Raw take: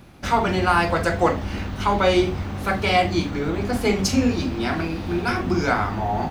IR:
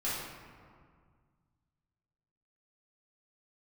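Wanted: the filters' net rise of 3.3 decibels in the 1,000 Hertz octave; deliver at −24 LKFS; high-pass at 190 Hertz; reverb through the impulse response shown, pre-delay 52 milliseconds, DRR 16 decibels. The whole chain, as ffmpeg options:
-filter_complex "[0:a]highpass=190,equalizer=frequency=1000:width_type=o:gain=4.5,asplit=2[link_01][link_02];[1:a]atrim=start_sample=2205,adelay=52[link_03];[link_02][link_03]afir=irnorm=-1:irlink=0,volume=-22dB[link_04];[link_01][link_04]amix=inputs=2:normalize=0,volume=-3dB"

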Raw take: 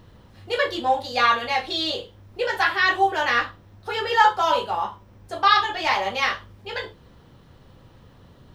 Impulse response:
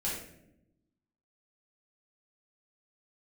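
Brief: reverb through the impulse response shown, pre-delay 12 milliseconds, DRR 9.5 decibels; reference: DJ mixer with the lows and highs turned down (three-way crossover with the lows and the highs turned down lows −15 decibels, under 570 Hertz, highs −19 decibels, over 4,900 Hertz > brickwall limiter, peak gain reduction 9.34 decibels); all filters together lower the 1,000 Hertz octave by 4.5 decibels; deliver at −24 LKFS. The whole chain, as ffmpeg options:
-filter_complex "[0:a]equalizer=frequency=1000:width_type=o:gain=-4.5,asplit=2[link_01][link_02];[1:a]atrim=start_sample=2205,adelay=12[link_03];[link_02][link_03]afir=irnorm=-1:irlink=0,volume=-14dB[link_04];[link_01][link_04]amix=inputs=2:normalize=0,acrossover=split=570 4900:gain=0.178 1 0.112[link_05][link_06][link_07];[link_05][link_06][link_07]amix=inputs=3:normalize=0,volume=3dB,alimiter=limit=-13dB:level=0:latency=1"

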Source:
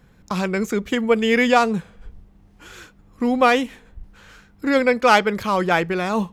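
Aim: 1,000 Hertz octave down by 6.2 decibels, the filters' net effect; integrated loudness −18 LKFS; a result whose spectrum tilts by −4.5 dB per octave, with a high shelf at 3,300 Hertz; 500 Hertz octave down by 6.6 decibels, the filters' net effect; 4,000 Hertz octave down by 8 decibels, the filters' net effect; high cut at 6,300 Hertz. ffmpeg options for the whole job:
ffmpeg -i in.wav -af "lowpass=6300,equalizer=frequency=500:width_type=o:gain=-6,equalizer=frequency=1000:width_type=o:gain=-5.5,highshelf=frequency=3300:gain=-3.5,equalizer=frequency=4000:width_type=o:gain=-8,volume=6dB" out.wav

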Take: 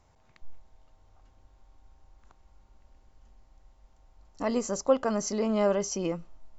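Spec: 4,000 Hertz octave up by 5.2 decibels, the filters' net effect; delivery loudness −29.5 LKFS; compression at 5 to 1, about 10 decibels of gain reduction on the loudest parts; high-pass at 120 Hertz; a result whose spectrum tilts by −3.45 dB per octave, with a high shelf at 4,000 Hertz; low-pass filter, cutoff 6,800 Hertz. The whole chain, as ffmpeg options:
ffmpeg -i in.wav -af "highpass=120,lowpass=6800,highshelf=frequency=4000:gain=5,equalizer=frequency=4000:width_type=o:gain=5,acompressor=threshold=-28dB:ratio=5,volume=3.5dB" out.wav

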